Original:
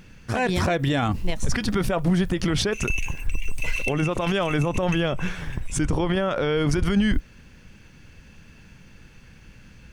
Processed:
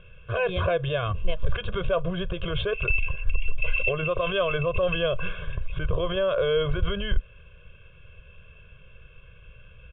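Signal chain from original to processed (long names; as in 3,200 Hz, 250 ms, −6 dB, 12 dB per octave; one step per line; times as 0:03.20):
Chebyshev low-pass with heavy ripple 3,500 Hz, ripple 3 dB
phaser with its sweep stopped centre 1,300 Hz, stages 8
comb filter 1.9 ms, depth 71%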